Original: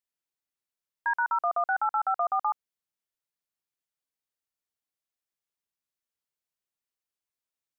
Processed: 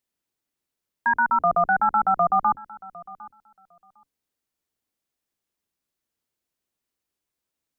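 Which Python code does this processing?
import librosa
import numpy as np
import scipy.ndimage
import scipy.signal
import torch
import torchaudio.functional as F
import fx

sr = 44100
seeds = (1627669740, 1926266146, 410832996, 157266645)

p1 = fx.octave_divider(x, sr, octaves=2, level_db=-1.0)
p2 = fx.peak_eq(p1, sr, hz=280.0, db=7.5, octaves=1.8)
p3 = p2 + fx.echo_feedback(p2, sr, ms=755, feedback_pct=16, wet_db=-20.5, dry=0)
y = F.gain(torch.from_numpy(p3), 5.5).numpy()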